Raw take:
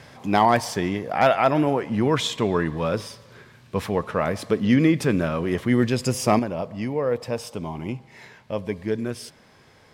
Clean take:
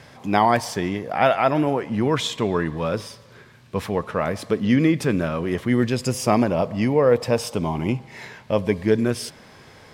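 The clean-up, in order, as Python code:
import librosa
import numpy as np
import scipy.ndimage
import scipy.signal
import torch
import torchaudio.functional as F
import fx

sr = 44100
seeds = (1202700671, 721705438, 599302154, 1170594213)

y = fx.fix_declip(x, sr, threshold_db=-7.0)
y = fx.fix_level(y, sr, at_s=6.39, step_db=7.0)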